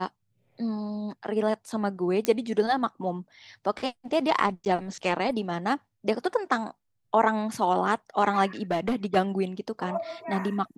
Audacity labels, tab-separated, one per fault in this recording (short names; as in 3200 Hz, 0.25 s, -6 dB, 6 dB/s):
2.250000	2.250000	pop -10 dBFS
4.650000	4.660000	gap 9.4 ms
8.710000	9.170000	clipped -21 dBFS